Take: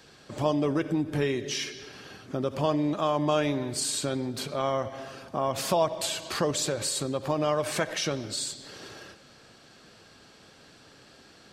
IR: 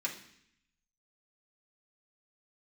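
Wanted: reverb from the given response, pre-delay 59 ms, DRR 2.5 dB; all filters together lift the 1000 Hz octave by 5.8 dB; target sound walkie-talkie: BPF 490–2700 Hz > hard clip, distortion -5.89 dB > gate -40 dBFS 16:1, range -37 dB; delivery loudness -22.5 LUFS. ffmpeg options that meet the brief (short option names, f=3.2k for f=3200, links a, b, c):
-filter_complex "[0:a]equalizer=f=1k:t=o:g=7.5,asplit=2[a][b];[1:a]atrim=start_sample=2205,adelay=59[c];[b][c]afir=irnorm=-1:irlink=0,volume=-5.5dB[d];[a][d]amix=inputs=2:normalize=0,highpass=490,lowpass=2.7k,asoftclip=type=hard:threshold=-26dB,agate=range=-37dB:threshold=-40dB:ratio=16,volume=9dB"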